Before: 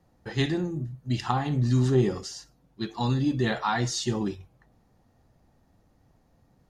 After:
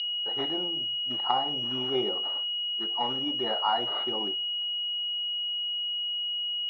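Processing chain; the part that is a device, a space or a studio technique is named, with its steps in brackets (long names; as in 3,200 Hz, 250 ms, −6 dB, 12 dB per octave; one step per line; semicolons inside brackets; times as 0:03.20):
toy sound module (linearly interpolated sample-rate reduction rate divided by 4×; switching amplifier with a slow clock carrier 2,900 Hz; loudspeaker in its box 740–4,400 Hz, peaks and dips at 1,100 Hz −7 dB, 1,700 Hz −9 dB, 2,600 Hz −8 dB, 3,900 Hz +7 dB)
level +7 dB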